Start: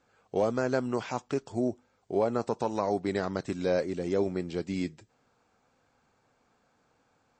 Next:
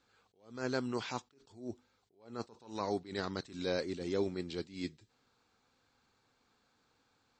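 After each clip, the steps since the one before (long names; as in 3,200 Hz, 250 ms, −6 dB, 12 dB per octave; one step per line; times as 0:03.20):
graphic EQ with 15 bands 160 Hz −4 dB, 630 Hz −7 dB, 4,000 Hz +9 dB
level that may rise only so fast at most 130 dB per second
level −3.5 dB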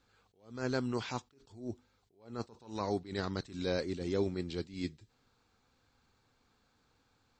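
low-shelf EQ 110 Hz +12 dB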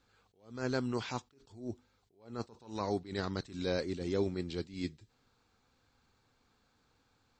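no processing that can be heard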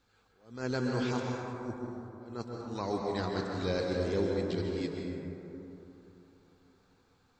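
dense smooth reverb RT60 3.3 s, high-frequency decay 0.3×, pre-delay 115 ms, DRR −0.5 dB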